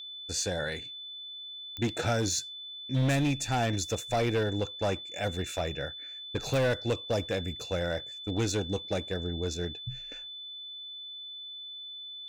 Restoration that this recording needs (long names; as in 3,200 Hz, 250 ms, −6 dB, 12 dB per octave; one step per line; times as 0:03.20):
clipped peaks rebuilt −22.5 dBFS
click removal
notch filter 3,500 Hz, Q 30